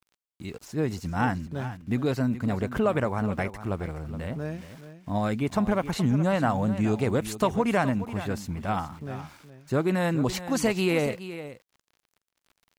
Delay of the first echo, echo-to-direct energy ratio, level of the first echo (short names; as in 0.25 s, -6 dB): 0.421 s, -13.0 dB, -13.0 dB